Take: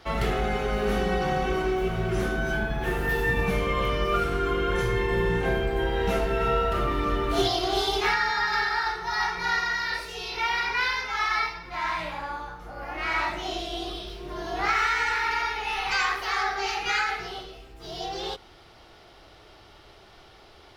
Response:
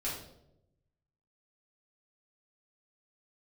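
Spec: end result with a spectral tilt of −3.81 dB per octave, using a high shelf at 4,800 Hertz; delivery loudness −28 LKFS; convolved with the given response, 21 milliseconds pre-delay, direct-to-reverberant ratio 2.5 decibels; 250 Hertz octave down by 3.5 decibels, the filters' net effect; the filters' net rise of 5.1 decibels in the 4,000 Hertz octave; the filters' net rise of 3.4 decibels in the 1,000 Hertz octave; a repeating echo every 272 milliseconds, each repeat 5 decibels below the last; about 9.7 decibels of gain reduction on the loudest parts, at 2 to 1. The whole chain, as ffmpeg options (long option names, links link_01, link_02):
-filter_complex "[0:a]equalizer=frequency=250:width_type=o:gain=-6.5,equalizer=frequency=1000:width_type=o:gain=4.5,equalizer=frequency=4000:width_type=o:gain=4.5,highshelf=frequency=4800:gain=3.5,acompressor=threshold=-36dB:ratio=2,aecho=1:1:272|544|816|1088|1360|1632|1904:0.562|0.315|0.176|0.0988|0.0553|0.031|0.0173,asplit=2[link_01][link_02];[1:a]atrim=start_sample=2205,adelay=21[link_03];[link_02][link_03]afir=irnorm=-1:irlink=0,volume=-6dB[link_04];[link_01][link_04]amix=inputs=2:normalize=0,volume=1dB"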